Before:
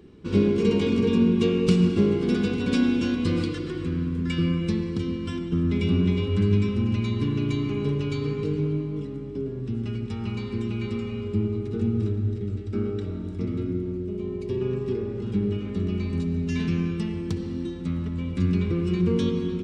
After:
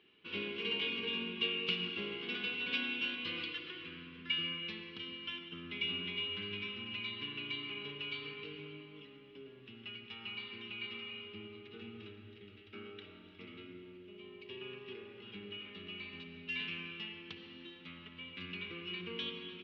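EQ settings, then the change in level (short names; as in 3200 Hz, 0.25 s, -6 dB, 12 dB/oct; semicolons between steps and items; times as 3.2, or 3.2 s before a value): band-pass 2900 Hz, Q 4; air absorption 280 m; +9.5 dB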